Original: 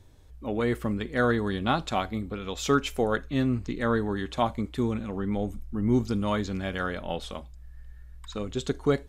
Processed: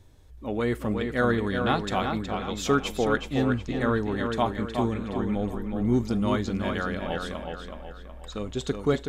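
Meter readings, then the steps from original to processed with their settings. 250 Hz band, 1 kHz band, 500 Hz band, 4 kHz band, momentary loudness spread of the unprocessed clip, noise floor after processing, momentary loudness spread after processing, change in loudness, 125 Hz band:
+1.5 dB, +1.5 dB, +1.5 dB, +1.0 dB, 9 LU, -43 dBFS, 11 LU, +1.0 dB, +1.0 dB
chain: tape echo 370 ms, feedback 47%, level -4 dB, low-pass 4 kHz

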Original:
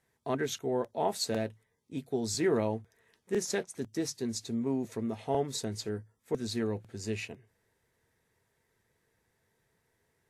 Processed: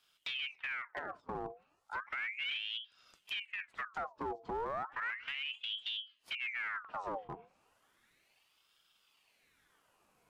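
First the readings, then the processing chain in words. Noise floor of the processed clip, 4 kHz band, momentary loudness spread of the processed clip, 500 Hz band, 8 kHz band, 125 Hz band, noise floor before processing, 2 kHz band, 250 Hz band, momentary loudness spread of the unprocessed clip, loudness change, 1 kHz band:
-74 dBFS, +1.5 dB, 7 LU, -14.0 dB, under -25 dB, -19.5 dB, -77 dBFS, +6.0 dB, -20.0 dB, 9 LU, -5.5 dB, -2.0 dB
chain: peak limiter -27.5 dBFS, peak gain reduction 10.5 dB; low-pass that closes with the level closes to 330 Hz, closed at -34 dBFS; hard clipper -38 dBFS, distortion -9 dB; ring modulator with a swept carrier 1.9 kHz, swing 70%, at 0.34 Hz; trim +5.5 dB

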